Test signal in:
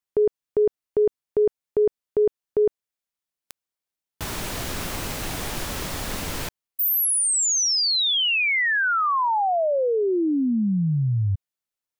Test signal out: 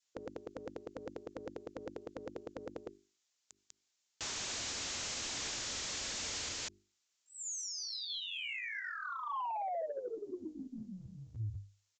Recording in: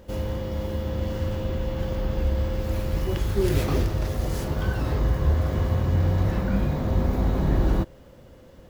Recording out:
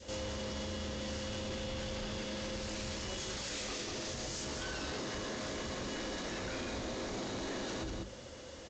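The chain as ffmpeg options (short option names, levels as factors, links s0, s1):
-filter_complex "[0:a]adynamicequalizer=threshold=0.0126:dfrequency=930:dqfactor=1:tfrequency=930:tqfactor=1:attack=5:release=100:ratio=0.375:range=3.5:mode=cutabove:tftype=bell,highpass=f=95:p=1,crystalizer=i=5.5:c=0,asplit=2[s0][s1];[s1]aecho=0:1:196:0.398[s2];[s0][s2]amix=inputs=2:normalize=0,afftfilt=real='re*lt(hypot(re,im),0.316)':imag='im*lt(hypot(re,im),0.316)':win_size=1024:overlap=0.75,bandreject=f=50:t=h:w=6,bandreject=f=100:t=h:w=6,bandreject=f=150:t=h:w=6,bandreject=f=200:t=h:w=6,bandreject=f=250:t=h:w=6,bandreject=f=300:t=h:w=6,bandreject=f=350:t=h:w=6,bandreject=f=400:t=h:w=6,aresample=16000,asoftclip=type=tanh:threshold=0.0422,aresample=44100,equalizer=f=160:w=5:g=-11,alimiter=level_in=2.82:limit=0.0631:level=0:latency=1:release=81,volume=0.355" -ar 44100 -c:a aac -b:a 128k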